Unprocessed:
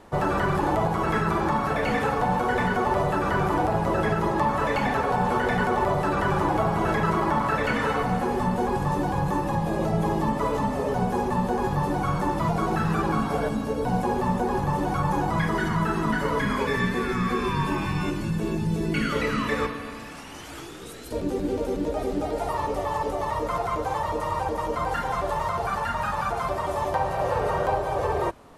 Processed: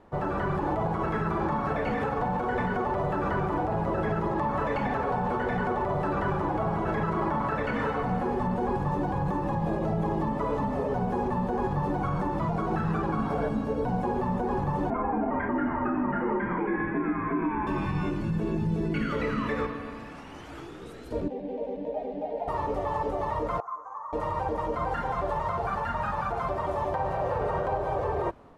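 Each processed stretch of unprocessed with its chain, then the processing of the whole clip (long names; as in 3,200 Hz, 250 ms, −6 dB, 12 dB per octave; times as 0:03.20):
0:14.90–0:17.67: Butterworth low-pass 2,600 Hz 48 dB per octave + low shelf with overshoot 240 Hz −9.5 dB, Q 3 + frequency shifter −75 Hz
0:21.28–0:22.48: three-way crossover with the lows and the highs turned down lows −16 dB, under 230 Hz, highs −23 dB, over 3,400 Hz + phaser with its sweep stopped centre 350 Hz, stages 6
0:23.60–0:24.13: pair of resonant band-passes 2,700 Hz, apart 2.5 octaves + high shelf with overshoot 3,000 Hz −8 dB, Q 1.5
whole clip: low-pass filter 1,500 Hz 6 dB per octave; automatic gain control gain up to 4 dB; brickwall limiter −14.5 dBFS; level −5 dB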